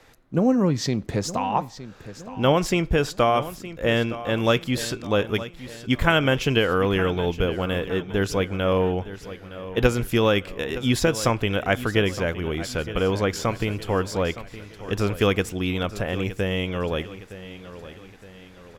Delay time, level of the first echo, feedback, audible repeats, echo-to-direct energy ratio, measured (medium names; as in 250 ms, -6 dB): 915 ms, -14.5 dB, 45%, 3, -13.5 dB